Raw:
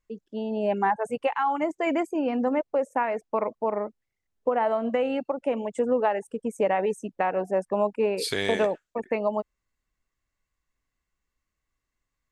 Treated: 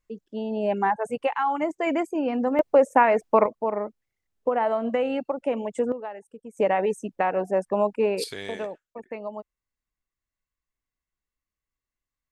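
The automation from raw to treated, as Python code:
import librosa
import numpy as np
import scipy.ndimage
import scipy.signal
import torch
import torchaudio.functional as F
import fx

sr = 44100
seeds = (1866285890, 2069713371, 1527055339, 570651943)

y = fx.gain(x, sr, db=fx.steps((0.0, 0.5), (2.59, 8.0), (3.46, 0.5), (5.92, -11.5), (6.57, 1.5), (8.24, -8.5)))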